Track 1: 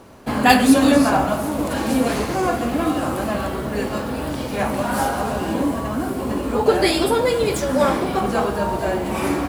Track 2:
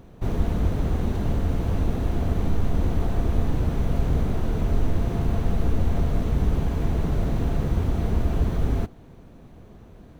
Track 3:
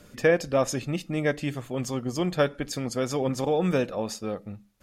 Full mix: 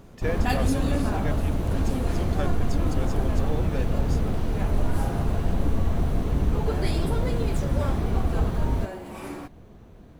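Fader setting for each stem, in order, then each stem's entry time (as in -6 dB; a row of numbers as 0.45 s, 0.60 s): -15.0 dB, -1.5 dB, -9.5 dB; 0.00 s, 0.00 s, 0.00 s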